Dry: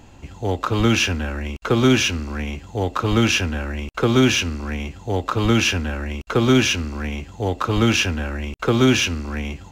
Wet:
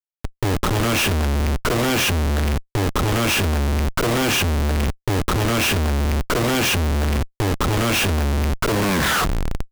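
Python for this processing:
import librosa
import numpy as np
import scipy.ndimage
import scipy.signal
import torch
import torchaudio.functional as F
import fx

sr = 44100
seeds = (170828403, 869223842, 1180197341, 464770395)

y = fx.tape_stop_end(x, sr, length_s=1.08)
y = fx.schmitt(y, sr, flips_db=-26.5)
y = y * 10.0 ** (1.5 / 20.0)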